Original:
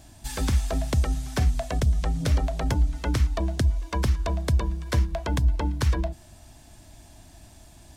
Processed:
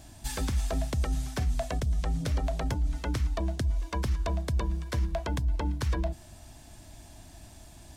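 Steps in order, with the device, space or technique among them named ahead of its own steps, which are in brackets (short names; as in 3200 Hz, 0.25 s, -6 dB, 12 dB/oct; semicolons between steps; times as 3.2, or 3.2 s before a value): compression on the reversed sound (reverse; compressor 5:1, threshold -25 dBFS, peak gain reduction 8.5 dB; reverse)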